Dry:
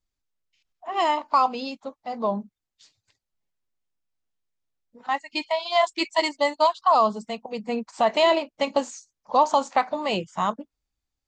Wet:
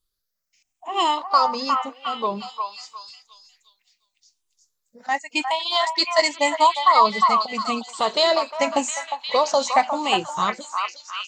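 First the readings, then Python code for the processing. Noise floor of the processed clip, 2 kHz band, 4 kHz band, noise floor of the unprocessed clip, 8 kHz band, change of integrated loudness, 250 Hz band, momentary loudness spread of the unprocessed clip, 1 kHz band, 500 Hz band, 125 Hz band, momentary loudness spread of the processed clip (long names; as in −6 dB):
−78 dBFS, +4.5 dB, +7.0 dB, below −85 dBFS, +10.5 dB, +3.0 dB, 0.0 dB, 14 LU, +3.5 dB, +0.5 dB, can't be measured, 12 LU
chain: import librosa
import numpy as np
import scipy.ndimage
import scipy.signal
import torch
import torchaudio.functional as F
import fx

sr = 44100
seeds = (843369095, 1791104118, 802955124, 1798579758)

y = fx.spec_ripple(x, sr, per_octave=0.63, drift_hz=0.87, depth_db=11)
y = fx.bass_treble(y, sr, bass_db=-2, treble_db=10)
y = fx.echo_stepped(y, sr, ms=356, hz=1100.0, octaves=0.7, feedback_pct=70, wet_db=-1.5)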